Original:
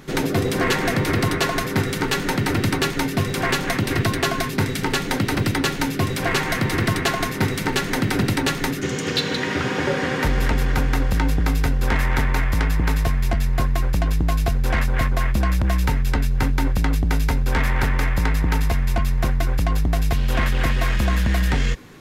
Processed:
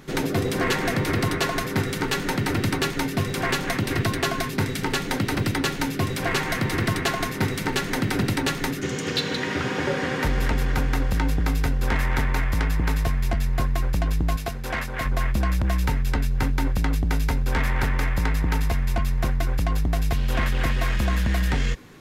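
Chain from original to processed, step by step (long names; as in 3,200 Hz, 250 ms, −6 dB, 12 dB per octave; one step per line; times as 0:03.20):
0:14.36–0:15.06: low-shelf EQ 170 Hz −11 dB
level −3 dB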